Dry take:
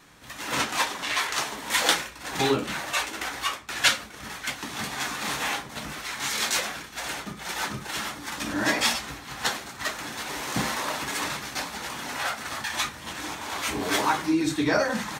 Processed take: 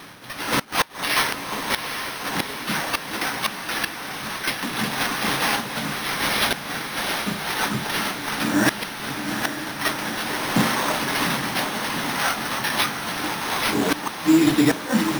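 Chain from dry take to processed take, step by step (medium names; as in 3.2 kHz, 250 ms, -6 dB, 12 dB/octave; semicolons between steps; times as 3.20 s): one-sided wavefolder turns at -18 dBFS; high-pass 99 Hz 24 dB/octave; inverted gate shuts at -14 dBFS, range -26 dB; dynamic bell 210 Hz, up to +5 dB, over -44 dBFS, Q 1.3; careless resampling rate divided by 6×, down none, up hold; echo that smears into a reverb 810 ms, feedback 61%, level -7.5 dB; reverse; upward compressor, threshold -36 dBFS; reverse; trim +6 dB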